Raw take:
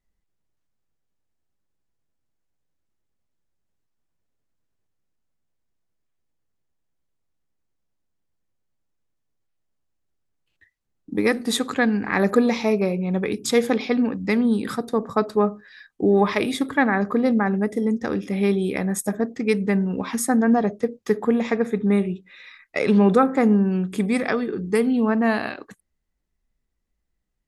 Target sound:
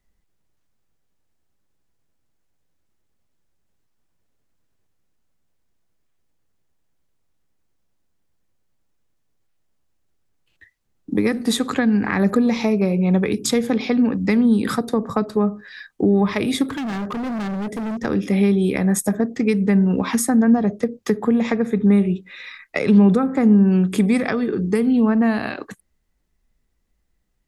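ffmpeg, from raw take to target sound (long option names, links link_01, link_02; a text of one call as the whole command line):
ffmpeg -i in.wav -filter_complex "[0:a]acrossover=split=220[link_01][link_02];[link_02]acompressor=threshold=-27dB:ratio=10[link_03];[link_01][link_03]amix=inputs=2:normalize=0,asettb=1/sr,asplit=3[link_04][link_05][link_06];[link_04]atrim=end=16.674[link_07];[link_05]atrim=start=16.67:end=18.05,asetpts=PTS-STARTPTS,afade=type=in:duration=0.004:curve=qsin,afade=type=out:start_time=1.376:duration=0.004:curve=qsin,asoftclip=type=hard:threshold=-31.5dB[link_08];[link_06]atrim=start=18.046[link_09];[link_07][link_08]acrossfade=duration=0.004:curve1=hsin:curve2=qsin[link_10];[link_10][link_09]acrossfade=duration=0.004:curve1=qsin:curve2=hsin,volume=7.5dB" out.wav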